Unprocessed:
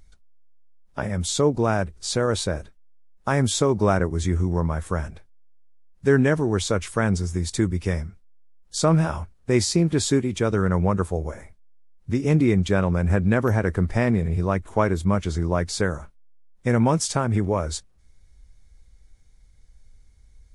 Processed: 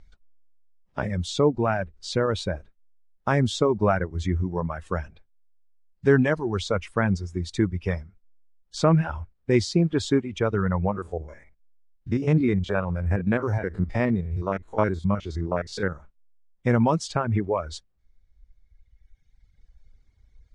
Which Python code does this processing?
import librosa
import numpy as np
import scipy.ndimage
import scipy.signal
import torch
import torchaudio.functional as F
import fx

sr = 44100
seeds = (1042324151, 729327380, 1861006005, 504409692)

y = fx.spec_steps(x, sr, hold_ms=50, at=(10.88, 15.95), fade=0.02)
y = fx.dereverb_blind(y, sr, rt60_s=2.0)
y = scipy.signal.sosfilt(scipy.signal.butter(2, 4100.0, 'lowpass', fs=sr, output='sos'), y)